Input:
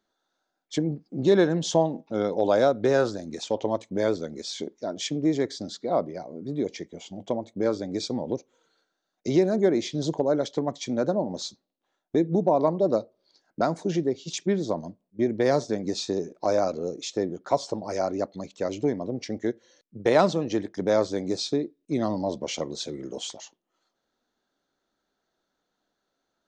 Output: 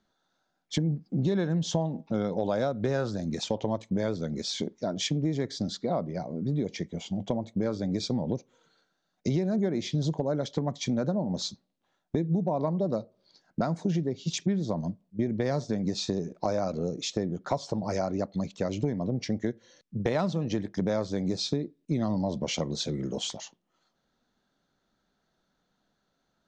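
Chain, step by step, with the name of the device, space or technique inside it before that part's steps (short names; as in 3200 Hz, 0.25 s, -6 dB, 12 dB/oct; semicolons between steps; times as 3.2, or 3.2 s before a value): jukebox (LPF 7300 Hz 12 dB/oct; resonant low shelf 240 Hz +7 dB, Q 1.5; compressor 4:1, threshold -28 dBFS, peak gain reduction 12.5 dB); gain +2.5 dB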